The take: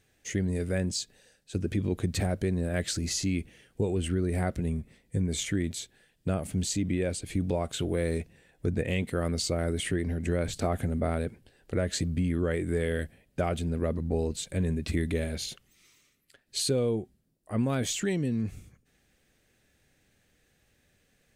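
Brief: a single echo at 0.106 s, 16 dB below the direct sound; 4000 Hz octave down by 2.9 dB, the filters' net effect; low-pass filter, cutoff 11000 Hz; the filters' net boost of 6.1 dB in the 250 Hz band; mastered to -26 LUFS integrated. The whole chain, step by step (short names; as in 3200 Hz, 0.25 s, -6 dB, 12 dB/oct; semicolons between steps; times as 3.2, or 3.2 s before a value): LPF 11000 Hz; bell 250 Hz +8 dB; bell 4000 Hz -3.5 dB; echo 0.106 s -16 dB; gain +1 dB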